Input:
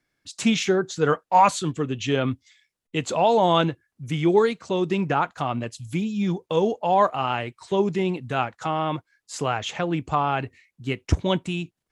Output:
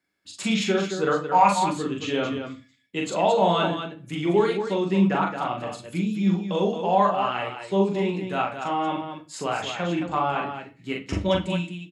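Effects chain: high-pass 190 Hz 6 dB/octave; band-stop 5.9 kHz, Q 8.3; loudspeakers at several distances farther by 14 m -3 dB, 76 m -7 dB; on a send at -4 dB: reverberation RT60 0.35 s, pre-delay 5 ms; on the sum: trim -4 dB

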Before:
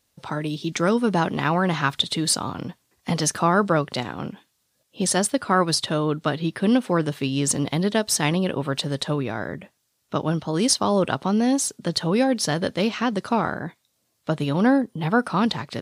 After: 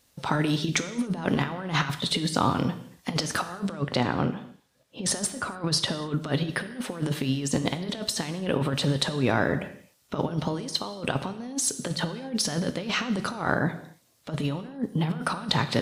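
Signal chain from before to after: 3.82–5.96 s: treble shelf 4.2 kHz -11.5 dB; compressor with a negative ratio -27 dBFS, ratio -0.5; gated-style reverb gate 310 ms falling, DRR 9.5 dB

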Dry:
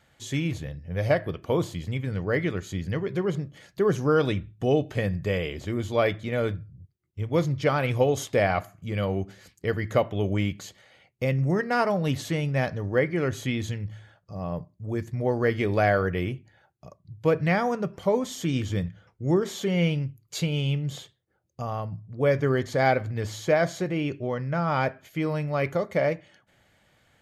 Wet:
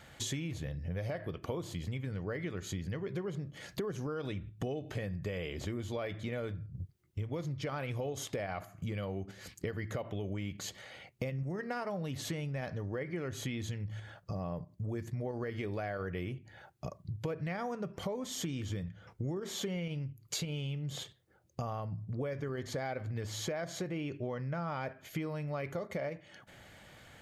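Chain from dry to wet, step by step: in parallel at 0 dB: level held to a coarse grid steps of 23 dB; on the sum: peak limiter -16.5 dBFS, peak gain reduction 10.5 dB; compression 8:1, threshold -39 dBFS, peak gain reduction 18 dB; trim +4 dB

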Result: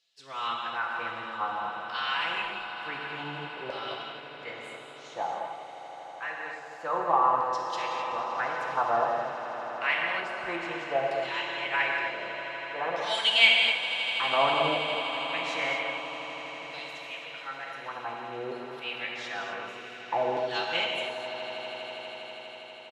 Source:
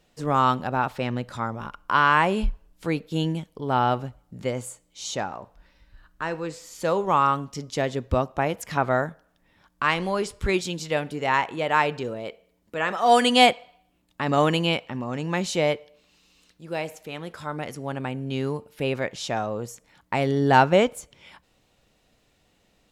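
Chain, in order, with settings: comb 5.4 ms, depth 39%; formant-preserving pitch shift -1.5 st; LFO band-pass saw down 0.54 Hz 610–4500 Hz; echo with a slow build-up 81 ms, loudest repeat 8, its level -17 dB; gated-style reverb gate 290 ms flat, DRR 0 dB

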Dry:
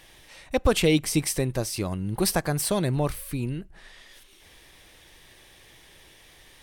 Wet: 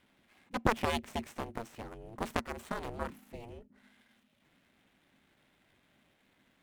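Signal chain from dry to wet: median filter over 9 samples; Chebyshev shaper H 3 -7 dB, 4 -14 dB, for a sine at -8.5 dBFS; ring modulator 230 Hz; trim -2 dB

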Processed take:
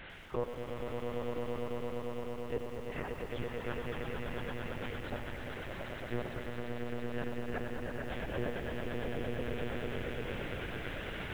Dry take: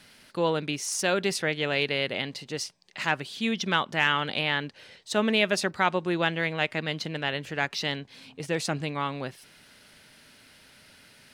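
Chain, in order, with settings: every event in the spectrogram widened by 60 ms; bass shelf 240 Hz -4.5 dB; reverse; compression 6:1, threshold -33 dBFS, peak gain reduction 16.5 dB; reverse; inverted gate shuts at -26 dBFS, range -39 dB; hard clipper -33 dBFS, distortion -16 dB; low-pass that closes with the level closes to 1.1 kHz, closed at -39.5 dBFS; distance through air 340 m; echo with a slow build-up 113 ms, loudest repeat 8, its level -5 dB; monotone LPC vocoder at 8 kHz 120 Hz; bit-crushed delay 96 ms, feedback 80%, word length 10-bit, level -11 dB; trim +7 dB

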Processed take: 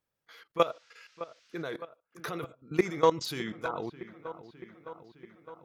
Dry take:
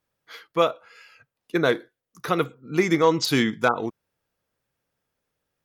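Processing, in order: dynamic bell 250 Hz, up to -6 dB, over -39 dBFS, Q 4.1; level held to a coarse grid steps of 17 dB; on a send: feedback echo behind a low-pass 611 ms, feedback 67%, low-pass 2.4 kHz, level -14.5 dB; 0.60–1.62 s: on the sum: band noise 1.3–6 kHz -64 dBFS; trim -2 dB

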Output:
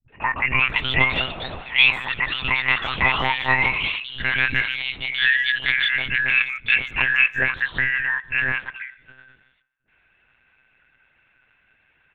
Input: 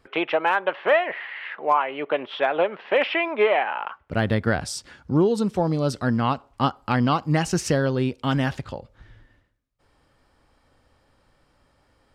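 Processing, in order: four frequency bands reordered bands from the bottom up 2143; small resonant body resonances 1/2.6 kHz, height 11 dB, ringing for 20 ms; ever faster or slower copies 417 ms, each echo +5 st, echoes 3, each echo -6 dB; phase dispersion highs, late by 89 ms, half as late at 320 Hz; monotone LPC vocoder at 8 kHz 130 Hz; speakerphone echo 150 ms, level -23 dB; trim -1 dB

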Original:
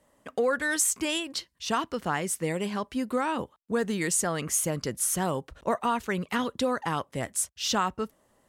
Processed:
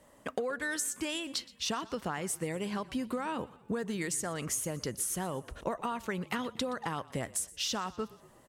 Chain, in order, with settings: compression 12:1, threshold -36 dBFS, peak gain reduction 15.5 dB; on a send: frequency-shifting echo 121 ms, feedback 53%, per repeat -32 Hz, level -20 dB; on the sum: trim +5 dB

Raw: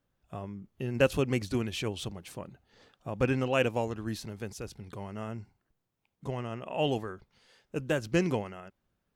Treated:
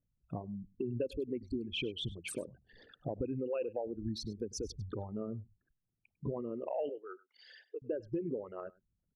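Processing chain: resonances exaggerated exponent 3; compression 8:1, threshold -40 dBFS, peak gain reduction 20 dB; 6.89–7.82 s: Bessel high-pass 540 Hz, order 8; delay 100 ms -19 dB; spectral noise reduction 10 dB; trim +6.5 dB

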